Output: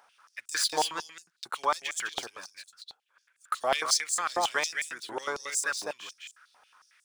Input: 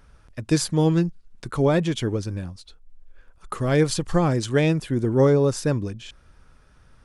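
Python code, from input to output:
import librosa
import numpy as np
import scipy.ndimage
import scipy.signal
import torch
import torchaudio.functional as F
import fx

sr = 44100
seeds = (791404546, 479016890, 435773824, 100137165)

y = scipy.ndimage.median_filter(x, 3, mode='constant')
y = fx.high_shelf(y, sr, hz=6000.0, db=4.5)
y = y + 10.0 ** (-5.0 / 20.0) * np.pad(y, (int(205 * sr / 1000.0), 0))[:len(y)]
y = fx.filter_held_highpass(y, sr, hz=11.0, low_hz=780.0, high_hz=7500.0)
y = F.gain(torch.from_numpy(y), -3.5).numpy()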